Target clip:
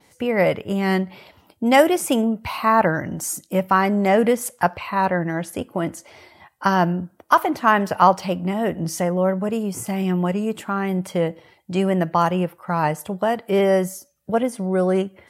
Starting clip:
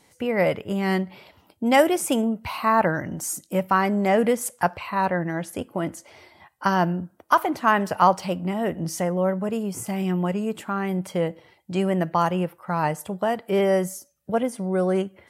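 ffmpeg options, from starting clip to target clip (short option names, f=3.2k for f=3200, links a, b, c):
-af "adynamicequalizer=threshold=0.00355:dfrequency=8400:dqfactor=1.4:tfrequency=8400:tqfactor=1.4:attack=5:release=100:ratio=0.375:range=2.5:mode=cutabove:tftype=bell,volume=3dB"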